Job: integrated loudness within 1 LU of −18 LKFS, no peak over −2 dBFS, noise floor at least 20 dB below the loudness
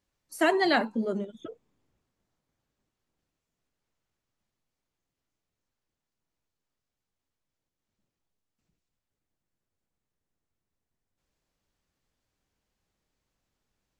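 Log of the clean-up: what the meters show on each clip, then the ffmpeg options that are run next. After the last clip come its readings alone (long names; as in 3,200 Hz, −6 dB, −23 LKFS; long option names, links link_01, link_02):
integrated loudness −26.5 LKFS; sample peak −11.5 dBFS; target loudness −18.0 LKFS
→ -af "volume=8.5dB"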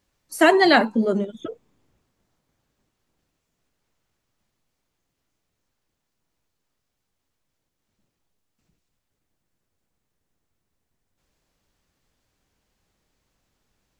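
integrated loudness −18.0 LKFS; sample peak −3.0 dBFS; background noise floor −79 dBFS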